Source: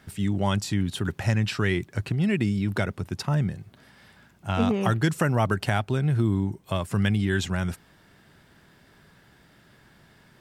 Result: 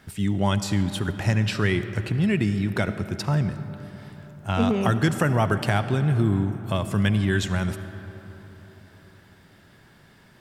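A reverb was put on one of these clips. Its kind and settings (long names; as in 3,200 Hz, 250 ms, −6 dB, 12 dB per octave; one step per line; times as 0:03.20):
comb and all-pass reverb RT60 4.1 s, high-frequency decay 0.45×, pre-delay 30 ms, DRR 10.5 dB
level +1.5 dB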